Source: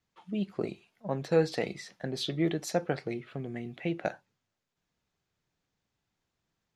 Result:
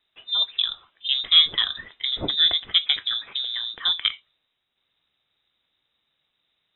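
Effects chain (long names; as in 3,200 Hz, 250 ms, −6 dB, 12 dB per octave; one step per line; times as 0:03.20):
voice inversion scrambler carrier 3,800 Hz
level +8.5 dB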